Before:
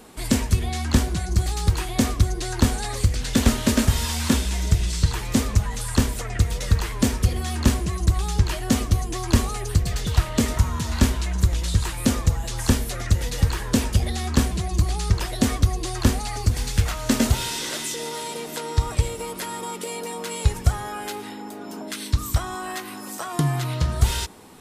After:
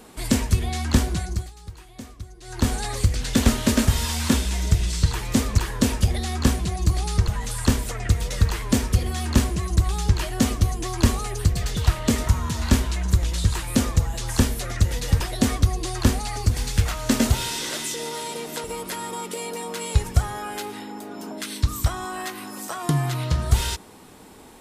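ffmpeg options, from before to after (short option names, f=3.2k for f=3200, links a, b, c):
-filter_complex "[0:a]asplit=7[a][b][c][d][e][f][g];[a]atrim=end=1.51,asetpts=PTS-STARTPTS,afade=t=out:st=1.18:d=0.33:silence=0.11885[h];[b]atrim=start=1.51:end=2.41,asetpts=PTS-STARTPTS,volume=-18.5dB[i];[c]atrim=start=2.41:end=5.582,asetpts=PTS-STARTPTS,afade=t=in:d=0.33:silence=0.11885[j];[d]atrim=start=13.498:end=15.202[k];[e]atrim=start=5.578:end=13.502[l];[f]atrim=start=15.198:end=18.642[m];[g]atrim=start=19.138[n];[h][i][j]concat=n=3:v=0:a=1[o];[o][k]acrossfade=d=0.004:c1=hsin:c2=hsin[p];[p][l]acrossfade=d=0.004:c1=hsin:c2=hsin[q];[q][m]acrossfade=d=0.004:c1=hsin:c2=hsin[r];[r][n]acrossfade=d=0.004:c1=hsin:c2=hsin"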